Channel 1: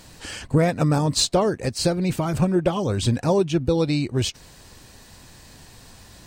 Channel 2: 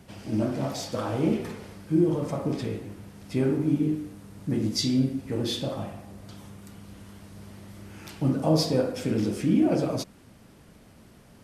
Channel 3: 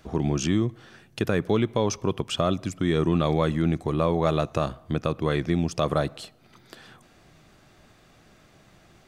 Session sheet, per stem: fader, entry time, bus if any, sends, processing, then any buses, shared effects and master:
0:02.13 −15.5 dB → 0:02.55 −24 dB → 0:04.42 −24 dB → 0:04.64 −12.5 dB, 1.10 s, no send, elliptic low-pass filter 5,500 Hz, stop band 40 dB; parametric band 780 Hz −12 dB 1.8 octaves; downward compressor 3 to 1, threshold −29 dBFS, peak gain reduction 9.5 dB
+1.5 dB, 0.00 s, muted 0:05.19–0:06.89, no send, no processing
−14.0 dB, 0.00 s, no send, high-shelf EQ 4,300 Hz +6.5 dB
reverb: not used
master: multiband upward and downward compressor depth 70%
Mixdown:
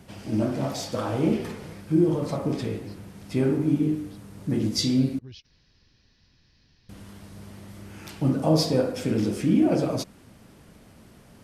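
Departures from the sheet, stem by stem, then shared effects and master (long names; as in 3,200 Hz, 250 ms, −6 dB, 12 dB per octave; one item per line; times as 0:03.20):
stem 3: muted
master: missing multiband upward and downward compressor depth 70%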